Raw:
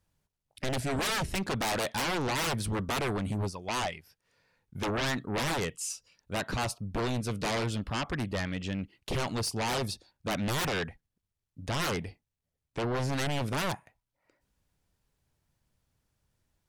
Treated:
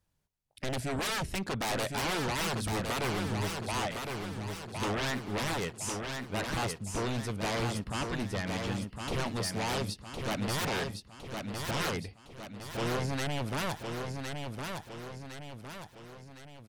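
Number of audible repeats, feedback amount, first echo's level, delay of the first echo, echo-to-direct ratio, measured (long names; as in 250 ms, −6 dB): 5, 49%, −5.0 dB, 1,060 ms, −4.0 dB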